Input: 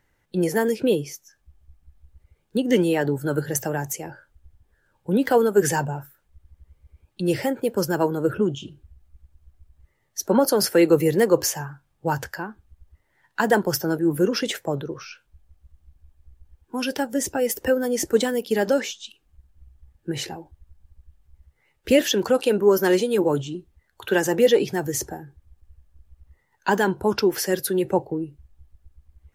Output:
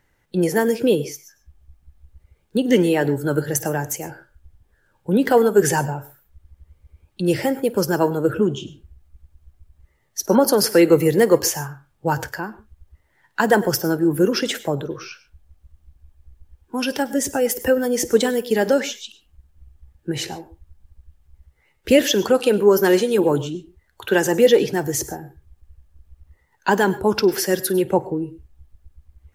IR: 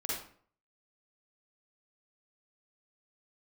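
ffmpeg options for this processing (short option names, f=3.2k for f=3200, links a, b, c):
-filter_complex "[0:a]asplit=2[a][b];[b]highshelf=f=9.9k:g=11.5[c];[1:a]atrim=start_sample=2205,atrim=end_sample=4410,adelay=52[d];[c][d]afir=irnorm=-1:irlink=0,volume=-20dB[e];[a][e]amix=inputs=2:normalize=0,volume=3dB"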